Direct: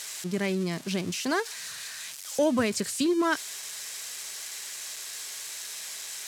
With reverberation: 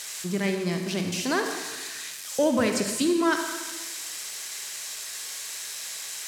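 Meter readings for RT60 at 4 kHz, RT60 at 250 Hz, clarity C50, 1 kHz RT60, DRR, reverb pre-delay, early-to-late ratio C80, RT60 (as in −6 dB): 1.2 s, 1.2 s, 4.5 dB, 1.3 s, 4.0 dB, 33 ms, 6.5 dB, 1.2 s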